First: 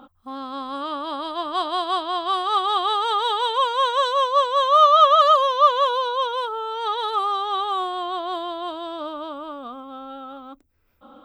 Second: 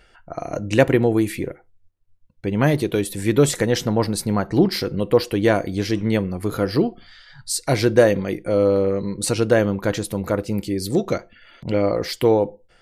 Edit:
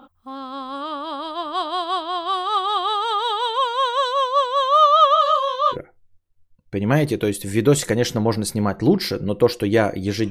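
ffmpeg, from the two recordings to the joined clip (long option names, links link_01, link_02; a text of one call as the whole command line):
ffmpeg -i cue0.wav -i cue1.wav -filter_complex "[0:a]asplit=3[link_01][link_02][link_03];[link_01]afade=type=out:start_time=5.14:duration=0.02[link_04];[link_02]flanger=delay=20:depth=7.6:speed=1.2,afade=type=in:start_time=5.14:duration=0.02,afade=type=out:start_time=5.77:duration=0.02[link_05];[link_03]afade=type=in:start_time=5.77:duration=0.02[link_06];[link_04][link_05][link_06]amix=inputs=3:normalize=0,apad=whole_dur=10.3,atrim=end=10.3,atrim=end=5.77,asetpts=PTS-STARTPTS[link_07];[1:a]atrim=start=1.42:end=6.01,asetpts=PTS-STARTPTS[link_08];[link_07][link_08]acrossfade=duration=0.06:curve1=tri:curve2=tri" out.wav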